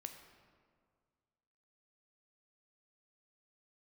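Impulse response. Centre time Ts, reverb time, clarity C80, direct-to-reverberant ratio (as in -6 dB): 29 ms, 1.9 s, 8.5 dB, 5.5 dB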